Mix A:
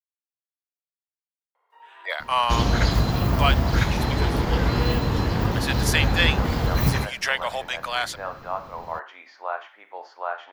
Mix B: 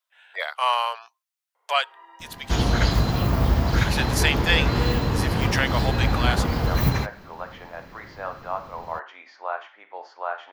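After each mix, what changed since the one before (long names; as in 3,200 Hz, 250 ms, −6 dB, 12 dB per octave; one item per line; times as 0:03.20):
speech: entry −1.70 s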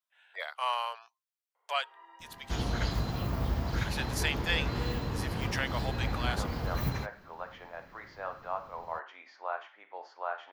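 speech −9.5 dB
first sound −6.0 dB
second sound −11.0 dB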